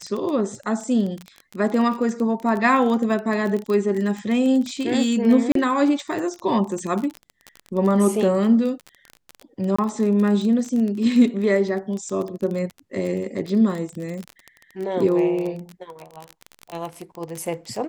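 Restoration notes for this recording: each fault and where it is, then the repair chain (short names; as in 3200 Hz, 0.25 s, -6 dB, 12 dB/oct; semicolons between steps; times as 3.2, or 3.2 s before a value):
crackle 24/s -25 dBFS
5.52–5.55 gap 33 ms
9.76–9.79 gap 25 ms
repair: de-click; interpolate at 5.52, 33 ms; interpolate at 9.76, 25 ms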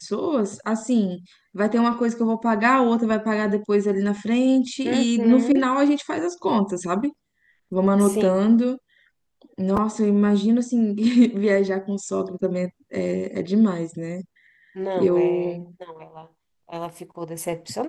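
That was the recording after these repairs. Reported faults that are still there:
none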